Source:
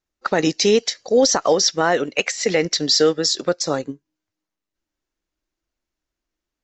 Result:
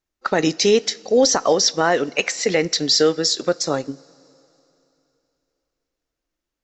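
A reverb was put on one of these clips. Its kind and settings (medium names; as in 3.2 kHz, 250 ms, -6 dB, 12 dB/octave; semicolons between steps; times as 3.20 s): two-slope reverb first 0.27 s, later 3.1 s, from -18 dB, DRR 16 dB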